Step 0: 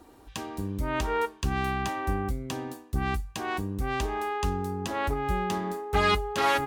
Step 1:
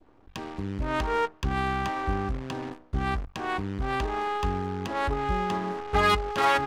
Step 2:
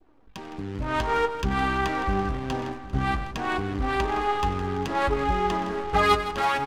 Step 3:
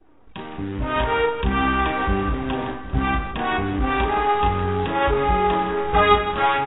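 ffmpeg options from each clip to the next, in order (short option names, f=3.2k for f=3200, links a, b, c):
-af "acrusher=bits=7:dc=4:mix=0:aa=0.000001,adynamicsmooth=sensitivity=3.5:basefreq=2.1k,adynamicequalizer=threshold=0.0178:dfrequency=1200:dqfactor=0.82:tfrequency=1200:tqfactor=0.82:attack=5:release=100:ratio=0.375:range=1.5:mode=boostabove:tftype=bell"
-filter_complex "[0:a]dynaudnorm=f=130:g=11:m=6dB,flanger=delay=2.4:depth=6.7:regen=47:speed=0.55:shape=triangular,asplit=2[a][b];[b]aecho=0:1:94|163|397|764:0.141|0.251|0.106|0.15[c];[a][c]amix=inputs=2:normalize=0,volume=1dB"
-filter_complex "[0:a]asplit=2[a][b];[b]aeval=exprs='clip(val(0),-1,0.0473)':c=same,volume=-3.5dB[c];[a][c]amix=inputs=2:normalize=0,asplit=2[d][e];[e]adelay=34,volume=-6dB[f];[d][f]amix=inputs=2:normalize=0" -ar 16000 -c:a aac -b:a 16k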